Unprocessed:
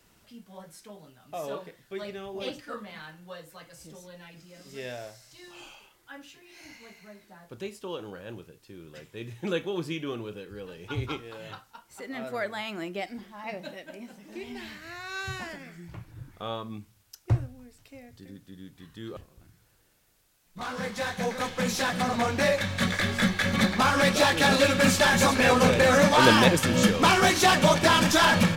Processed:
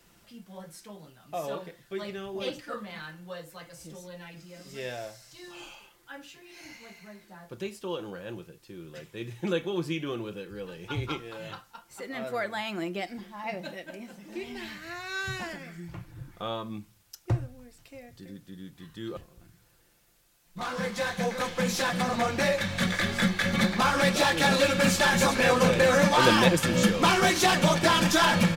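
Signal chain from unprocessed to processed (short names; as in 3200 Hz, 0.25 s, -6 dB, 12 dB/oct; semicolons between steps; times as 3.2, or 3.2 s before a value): comb 5.8 ms, depth 36%; in parallel at -2 dB: compressor, threshold -29 dBFS, peak gain reduction 16 dB; on the sum: gain -4 dB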